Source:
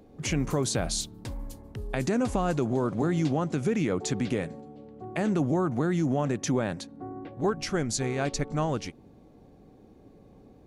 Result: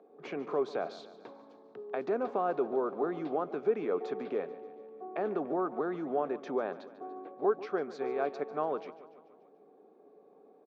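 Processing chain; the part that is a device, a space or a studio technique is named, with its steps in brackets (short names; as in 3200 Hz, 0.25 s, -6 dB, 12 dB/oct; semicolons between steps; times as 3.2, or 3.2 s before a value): HPF 150 Hz 24 dB/oct; phone earpiece (speaker cabinet 370–3100 Hz, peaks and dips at 420 Hz +10 dB, 710 Hz +6 dB, 1200 Hz +5 dB, 2000 Hz -7 dB, 2900 Hz -9 dB); feedback echo 0.145 s, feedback 57%, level -16 dB; gain -6 dB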